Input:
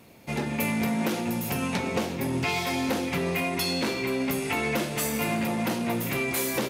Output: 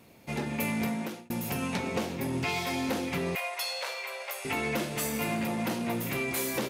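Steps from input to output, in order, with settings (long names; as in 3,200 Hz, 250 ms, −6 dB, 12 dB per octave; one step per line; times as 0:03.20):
0:00.86–0:01.30: fade out
0:03.35–0:04.45: elliptic high-pass filter 540 Hz, stop band 50 dB
level −3.5 dB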